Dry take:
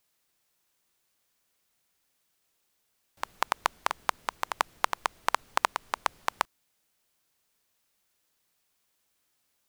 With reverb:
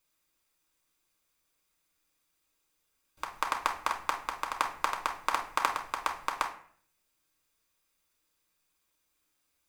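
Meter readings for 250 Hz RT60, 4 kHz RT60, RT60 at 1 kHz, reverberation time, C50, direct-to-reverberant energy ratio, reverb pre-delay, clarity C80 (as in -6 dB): 0.70 s, 0.35 s, 0.50 s, 0.55 s, 9.5 dB, 0.0 dB, 3 ms, 13.5 dB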